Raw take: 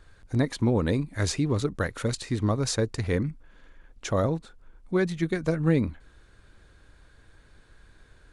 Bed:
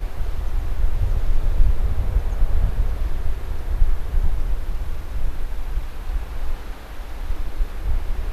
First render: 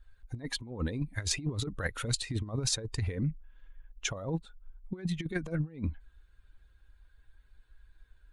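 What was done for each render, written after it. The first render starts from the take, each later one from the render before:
spectral dynamics exaggerated over time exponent 1.5
compressor whose output falls as the input rises −32 dBFS, ratio −0.5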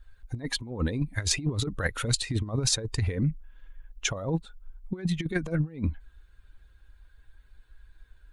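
level +5 dB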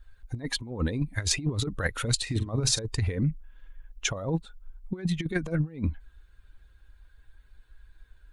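0:02.22–0:02.79: double-tracking delay 45 ms −11.5 dB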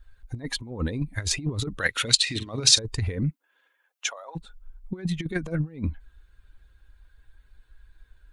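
0:01.78–0:02.78: meter weighting curve D
0:03.29–0:04.35: high-pass filter 280 Hz → 780 Hz 24 dB per octave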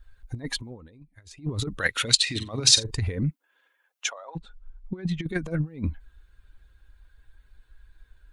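0:00.67–0:01.51: duck −22 dB, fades 0.14 s
0:02.35–0:02.91: double-tracking delay 46 ms −12.5 dB
0:04.10–0:05.25: high-frequency loss of the air 83 metres

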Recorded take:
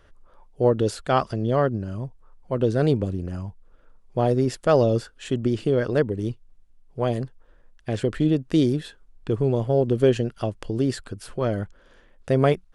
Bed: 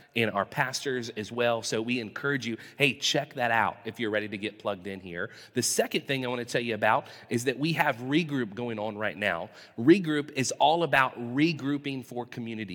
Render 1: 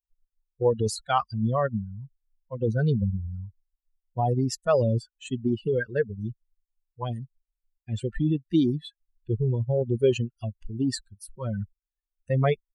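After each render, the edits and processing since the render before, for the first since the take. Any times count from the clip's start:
spectral dynamics exaggerated over time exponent 3
in parallel at 0 dB: compressor whose output falls as the input rises −31 dBFS, ratio −1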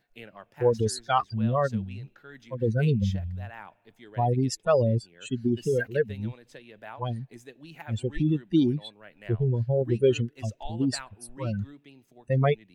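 mix in bed −19 dB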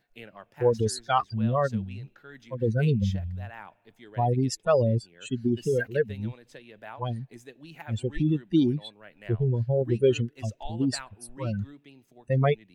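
no processing that can be heard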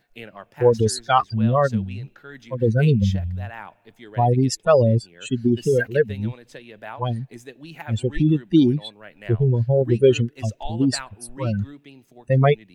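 level +6.5 dB

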